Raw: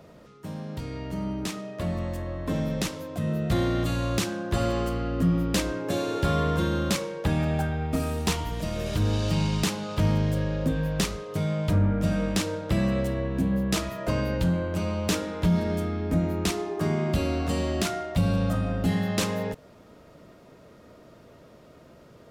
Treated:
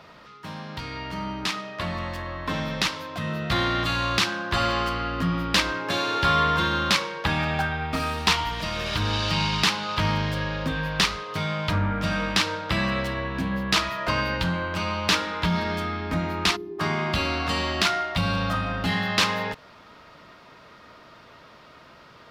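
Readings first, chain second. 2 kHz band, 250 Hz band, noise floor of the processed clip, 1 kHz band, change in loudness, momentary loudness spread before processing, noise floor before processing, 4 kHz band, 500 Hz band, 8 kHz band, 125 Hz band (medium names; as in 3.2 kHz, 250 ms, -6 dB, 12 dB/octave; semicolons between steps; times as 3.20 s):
+10.5 dB, -3.0 dB, -50 dBFS, +9.0 dB, +2.0 dB, 7 LU, -52 dBFS, +10.0 dB, -1.5 dB, +1.0 dB, -3.0 dB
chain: time-frequency box 16.56–16.79 s, 420–11000 Hz -26 dB; high-order bell 2.1 kHz +13.5 dB 3 oct; trim -3 dB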